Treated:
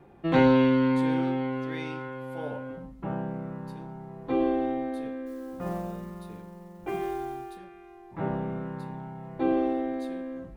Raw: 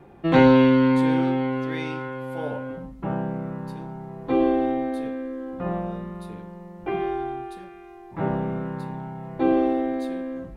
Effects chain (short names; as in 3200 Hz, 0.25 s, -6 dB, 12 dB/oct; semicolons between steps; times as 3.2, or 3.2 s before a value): 5.26–7.57 modulation noise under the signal 26 dB; gain -5 dB